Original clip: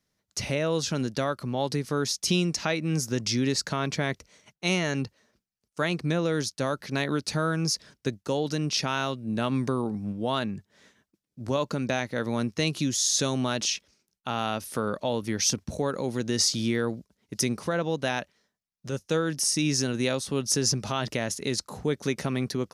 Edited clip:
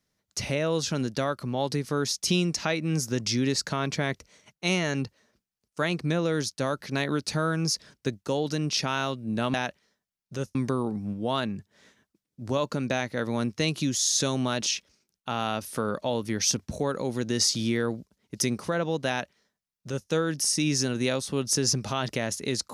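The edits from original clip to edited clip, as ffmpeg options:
-filter_complex "[0:a]asplit=3[a][b][c];[a]atrim=end=9.542[d];[b]atrim=start=18.068:end=19.082[e];[c]atrim=start=9.538[f];[d][e]acrossfade=d=0.004:c1=hsin:c2=hsin[g];[g][f]acrossfade=d=0.004:c1=hsin:c2=hsin"

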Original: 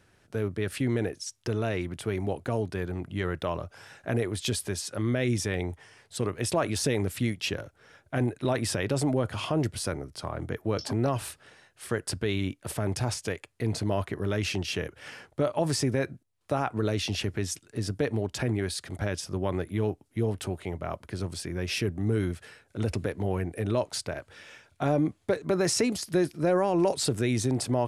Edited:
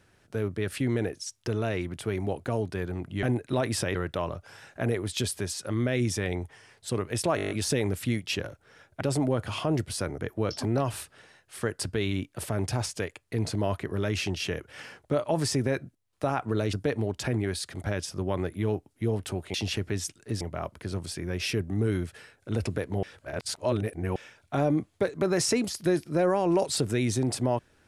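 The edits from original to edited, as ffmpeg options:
-filter_complex "[0:a]asplit=17[a][b][c][d][e][f][g][h][i][j][k][l][m][n][o][p][q];[a]atrim=end=3.232[r];[b]atrim=start=8.148:end=8.872[s];[c]atrim=start=3.228:end=6.662[t];[d]atrim=start=6.638:end=6.662[u];[e]atrim=start=6.638:end=6.662[v];[f]atrim=start=6.638:end=6.662[w];[g]atrim=start=6.638:end=6.662[x];[h]atrim=start=6.638:end=6.662[y];[i]atrim=start=6.638:end=6.662[z];[j]atrim=start=6.638:end=8.152[aa];[k]atrim=start=8.868:end=10.042[ab];[l]atrim=start=10.458:end=17.012[ac];[m]atrim=start=17.878:end=20.692[ad];[n]atrim=start=17.008:end=17.882[ae];[o]atrim=start=20.688:end=23.312[af];[p]atrim=start=23.308:end=24.442,asetpts=PTS-STARTPTS,areverse[ag];[q]atrim=start=24.438[ah];[r][s]acrossfade=d=0.004:c1=hsin:c2=hsin[ai];[ai][t]acrossfade=d=0.004:c1=hsin:c2=hsin[aj];[aj][u]acrossfade=d=0.004:c1=hsin:c2=hsin[ak];[ak][v]acrossfade=d=0.004:c1=hsin:c2=hsin[al];[al][w]acrossfade=d=0.004:c1=hsin:c2=hsin[am];[am][x]acrossfade=d=0.004:c1=hsin:c2=hsin[an];[an][y]acrossfade=d=0.004:c1=hsin:c2=hsin[ao];[ao][z]acrossfade=d=0.004:c1=hsin:c2=hsin[ap];[ap][aa]acrossfade=d=0.004:c1=hsin:c2=hsin[aq];[aq][ab]acrossfade=d=0.004:c1=hsin:c2=hsin[ar];[ar][ac]acrossfade=d=0.004:c1=hsin:c2=hsin[as];[as][ad]acrossfade=d=0.004:c1=hsin:c2=hsin[at];[at][ae]acrossfade=d=0.004:c1=hsin:c2=hsin[au];[au][af]acrossfade=d=0.004:c1=hsin:c2=hsin[av];[av][ag]acrossfade=d=0.004:c1=hsin:c2=hsin[aw];[aw][ah]acrossfade=d=0.004:c1=hsin:c2=hsin"

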